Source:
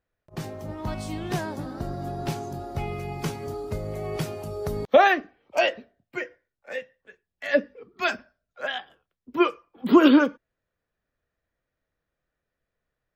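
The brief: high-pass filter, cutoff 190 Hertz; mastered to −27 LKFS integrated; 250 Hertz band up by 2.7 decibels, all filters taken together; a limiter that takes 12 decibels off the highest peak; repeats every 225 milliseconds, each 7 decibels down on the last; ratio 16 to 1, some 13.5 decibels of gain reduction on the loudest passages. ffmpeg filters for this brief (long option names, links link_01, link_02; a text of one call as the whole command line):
ffmpeg -i in.wav -af "highpass=190,equalizer=frequency=250:width_type=o:gain=4.5,acompressor=threshold=-22dB:ratio=16,alimiter=limit=-23.5dB:level=0:latency=1,aecho=1:1:225|450|675|900|1125:0.447|0.201|0.0905|0.0407|0.0183,volume=7dB" out.wav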